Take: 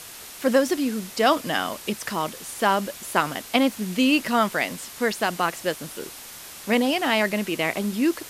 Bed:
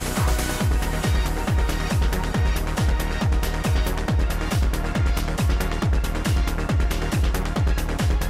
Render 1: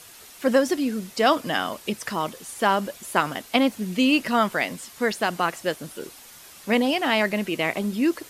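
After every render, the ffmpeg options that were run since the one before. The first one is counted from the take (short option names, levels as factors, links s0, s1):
-af "afftdn=nr=7:nf=-41"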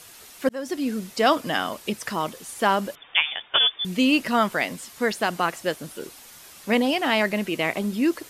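-filter_complex "[0:a]asettb=1/sr,asplit=3[s0][s1][s2];[s0]atrim=end=2.954[s3];[s1]atrim=start=2.95:end=3.85,asetpts=PTS-STARTPTS,afade=t=in:d=0.004:c=qsin,afade=t=out:st=0.896:d=0.004:c=qsin,lowpass=f=3100:t=q:w=0.5098,lowpass=f=3100:t=q:w=0.6013,lowpass=f=3100:t=q:w=0.9,lowpass=f=3100:t=q:w=2.563,afreqshift=-3700[s4];[s2]atrim=start=3.846[s5];[s3][s4]acrossfade=d=0.004:c1=hsin:c2=qsin[s6];[s6][s5]acrossfade=d=0.004:c1=qsin:c2=hsin,asplit=2[s7][s8];[s7]atrim=end=0.49,asetpts=PTS-STARTPTS,afade=t=out:st=0.486:d=0.004:c=hsin[s9];[s8]atrim=start=0.49,asetpts=PTS-STARTPTS,afade=t=in:d=0.41[s10];[s9][s10]concat=n=2:v=0:a=1"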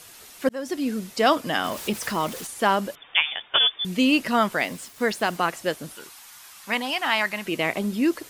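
-filter_complex "[0:a]asettb=1/sr,asplit=3[s0][s1][s2];[s0]atrim=end=1.644[s3];[s1]atrim=start=1.64:end=2.47,asetpts=PTS-STARTPTS,afade=t=in:d=0.004:c=qsin,afade=t=out:st=0.826:d=0.004:c=qsin,aeval=exprs='val(0)+0.5*0.0211*sgn(val(0))':c=same[s4];[s2]atrim=start=2.466[s5];[s3][s4]acrossfade=d=0.004:c1=hsin:c2=qsin[s6];[s6][s5]acrossfade=d=0.004:c1=qsin:c2=hsin,asettb=1/sr,asplit=3[s7][s8][s9];[s7]atrim=end=4.594[s10];[s8]atrim=start=4.59:end=5.37,asetpts=PTS-STARTPTS,afade=t=in:d=0.004:c=qsin,afade=t=out:st=0.776:d=0.004:c=qsin,aeval=exprs='val(0)*gte(abs(val(0)),0.00708)':c=same[s11];[s9]atrim=start=5.366[s12];[s10][s11]acrossfade=d=0.004:c1=hsin:c2=qsin[s13];[s13][s12]acrossfade=d=0.004:c1=qsin:c2=hsin,asettb=1/sr,asplit=3[s14][s15][s16];[s14]atrim=end=5.954[s17];[s15]atrim=start=5.95:end=7.46,asetpts=PTS-STARTPTS,afade=t=in:d=0.004:c=qsin,afade=t=out:st=1.506:d=0.004:c=qsin,lowshelf=f=690:t=q:w=1.5:g=-9.5[s18];[s16]atrim=start=7.456[s19];[s17][s18]acrossfade=d=0.004:c1=hsin:c2=qsin[s20];[s20][s19]acrossfade=d=0.004:c1=qsin:c2=hsin"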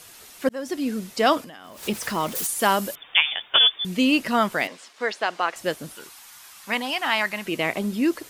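-filter_complex "[0:a]asettb=1/sr,asplit=3[s0][s1][s2];[s0]atrim=end=1.414[s3];[s1]atrim=start=1.41:end=1.83,asetpts=PTS-STARTPTS,afade=t=in:d=0.004:c=qsin,afade=t=out:st=0.416:d=0.004:c=qsin,acompressor=threshold=0.0126:ratio=16:attack=3.2:release=140:knee=1:detection=peak[s4];[s2]atrim=start=1.826[s5];[s3][s4]acrossfade=d=0.004:c1=hsin:c2=qsin[s6];[s6][s5]acrossfade=d=0.004:c1=qsin:c2=hsin,asettb=1/sr,asplit=3[s7][s8][s9];[s7]atrim=end=2.354[s10];[s8]atrim=start=2.35:end=3.79,asetpts=PTS-STARTPTS,afade=t=in:d=0.004:c=qsin,afade=t=out:st=1.436:d=0.004:c=qsin,aemphasis=mode=production:type=50kf[s11];[s9]atrim=start=3.786[s12];[s10][s11]acrossfade=d=0.004:c1=hsin:c2=qsin[s13];[s13][s12]acrossfade=d=0.004:c1=qsin:c2=hsin,asettb=1/sr,asplit=3[s14][s15][s16];[s14]atrim=end=4.674[s17];[s15]atrim=start=4.67:end=5.56,asetpts=PTS-STARTPTS,afade=t=in:d=0.004:c=qsin,afade=t=out:st=0.886:d=0.004:c=qsin,highpass=460,lowpass=5200[s18];[s16]atrim=start=5.556[s19];[s17][s18]acrossfade=d=0.004:c1=hsin:c2=qsin[s20];[s20][s19]acrossfade=d=0.004:c1=qsin:c2=hsin"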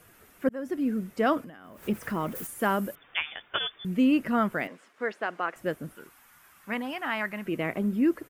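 -af "firequalizer=gain_entry='entry(170,0);entry(880,-9);entry(1400,-4);entry(4100,-21);entry(15000,-8)':delay=0.05:min_phase=1"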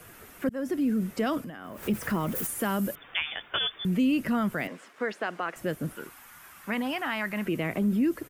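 -filter_complex "[0:a]acrossover=split=210|3000[s0][s1][s2];[s1]acompressor=threshold=0.0178:ratio=2.5[s3];[s0][s3][s2]amix=inputs=3:normalize=0,asplit=2[s4][s5];[s5]alimiter=level_in=2:limit=0.0631:level=0:latency=1:release=15,volume=0.501,volume=1.26[s6];[s4][s6]amix=inputs=2:normalize=0"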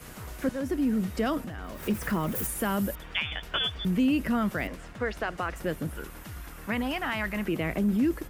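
-filter_complex "[1:a]volume=0.0944[s0];[0:a][s0]amix=inputs=2:normalize=0"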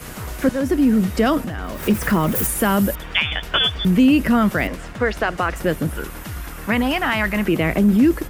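-af "volume=3.35"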